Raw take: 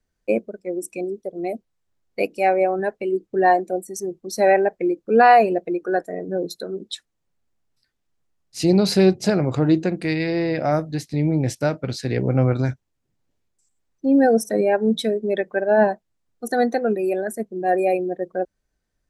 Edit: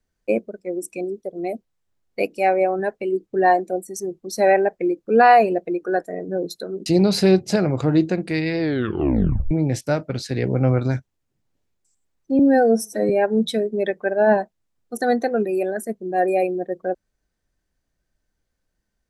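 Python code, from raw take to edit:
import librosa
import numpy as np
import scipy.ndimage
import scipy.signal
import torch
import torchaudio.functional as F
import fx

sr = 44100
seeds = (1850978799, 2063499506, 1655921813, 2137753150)

y = fx.edit(x, sr, fx.cut(start_s=6.86, length_s=1.74),
    fx.tape_stop(start_s=10.33, length_s=0.92),
    fx.stretch_span(start_s=14.13, length_s=0.47, factor=1.5), tone=tone)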